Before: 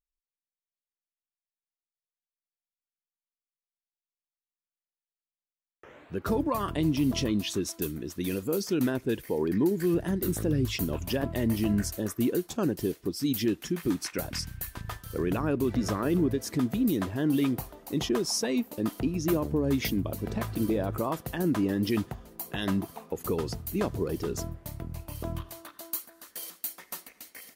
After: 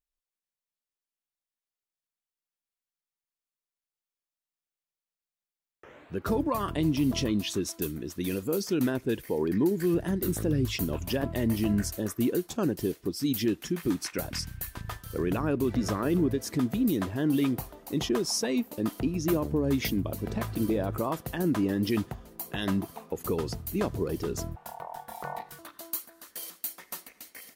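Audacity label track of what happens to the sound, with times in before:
24.560000	25.590000	ring modulation 810 Hz

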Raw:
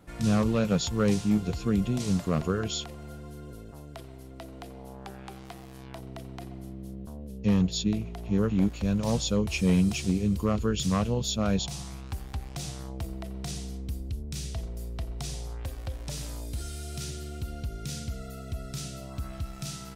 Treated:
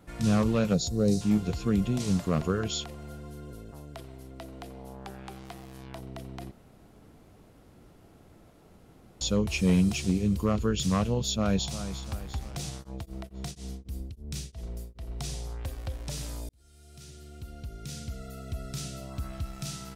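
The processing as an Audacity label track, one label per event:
0.740000	1.210000	gain on a spectral selection 770–3,600 Hz −15 dB
6.510000	9.210000	fill with room tone
11.220000	11.800000	delay throw 350 ms, feedback 55%, level −12 dB
12.690000	15.210000	tremolo along a rectified sine nulls at 5.1 Hz → 2 Hz
16.490000	18.670000	fade in

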